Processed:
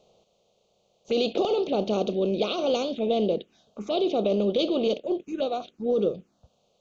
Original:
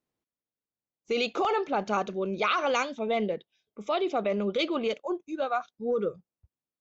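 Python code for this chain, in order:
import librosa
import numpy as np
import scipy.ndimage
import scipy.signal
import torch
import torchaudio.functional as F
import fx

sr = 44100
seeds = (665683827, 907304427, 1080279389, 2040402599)

y = fx.bin_compress(x, sr, power=0.6)
y = fx.high_shelf(y, sr, hz=6400.0, db=-9.5)
y = fx.env_phaser(y, sr, low_hz=280.0, high_hz=1800.0, full_db=-22.5)
y = fx.band_shelf(y, sr, hz=1400.0, db=-12.0, octaves=1.7)
y = F.gain(torch.from_numpy(y), 3.0).numpy()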